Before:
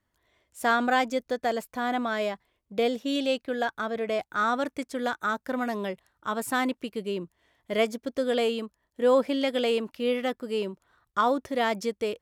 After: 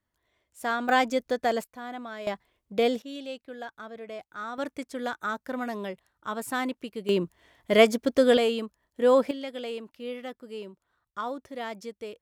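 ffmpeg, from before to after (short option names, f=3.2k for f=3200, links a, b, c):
-af "asetnsamples=n=441:p=0,asendcmd='0.89 volume volume 1.5dB;1.64 volume volume -10dB;2.27 volume volume 1.5dB;3.02 volume volume -11dB;4.58 volume volume -3dB;7.09 volume volume 7dB;8.37 volume volume 1dB;9.31 volume volume -9.5dB',volume=-5dB"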